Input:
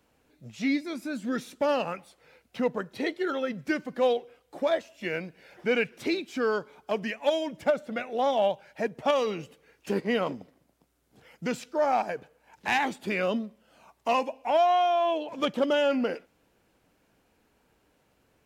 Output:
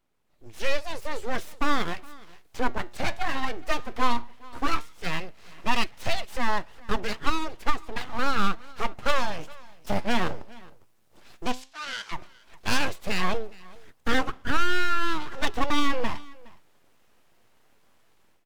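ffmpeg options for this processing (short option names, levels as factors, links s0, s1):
-filter_complex "[0:a]aeval=exprs='abs(val(0))':c=same,asplit=3[s0][s1][s2];[s0]afade=t=out:st=11.51:d=0.02[s3];[s1]bandpass=f=4600:t=q:w=0.99:csg=0,afade=t=in:st=11.51:d=0.02,afade=t=out:st=12.11:d=0.02[s4];[s2]afade=t=in:st=12.11:d=0.02[s5];[s3][s4][s5]amix=inputs=3:normalize=0,flanger=delay=0:depth=9.1:regen=84:speed=0.14:shape=sinusoidal,dynaudnorm=f=300:g=3:m=5.96,aecho=1:1:415:0.075,volume=0.501"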